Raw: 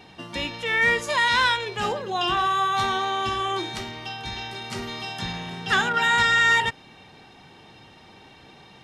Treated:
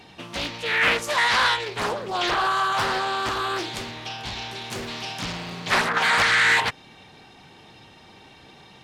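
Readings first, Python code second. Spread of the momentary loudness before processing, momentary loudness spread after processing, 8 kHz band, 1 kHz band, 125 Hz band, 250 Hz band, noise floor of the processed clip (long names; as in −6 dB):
14 LU, 14 LU, +3.0 dB, −0.5 dB, −1.0 dB, 0.0 dB, −50 dBFS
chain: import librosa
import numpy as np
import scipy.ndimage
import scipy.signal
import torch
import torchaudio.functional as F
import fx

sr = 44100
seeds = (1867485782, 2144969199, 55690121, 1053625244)

y = fx.high_shelf(x, sr, hz=7700.0, db=7.0)
y = fx.doppler_dist(y, sr, depth_ms=0.89)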